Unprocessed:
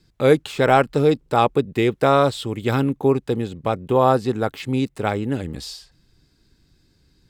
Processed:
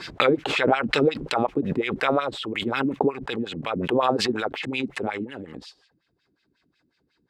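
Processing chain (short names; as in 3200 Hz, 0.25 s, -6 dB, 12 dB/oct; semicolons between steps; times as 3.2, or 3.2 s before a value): LFO band-pass sine 5.5 Hz 230–2900 Hz; backwards sustainer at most 37 dB/s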